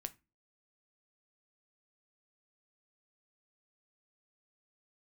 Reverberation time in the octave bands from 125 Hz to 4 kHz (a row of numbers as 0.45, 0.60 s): 0.40, 0.40, 0.30, 0.25, 0.25, 0.20 s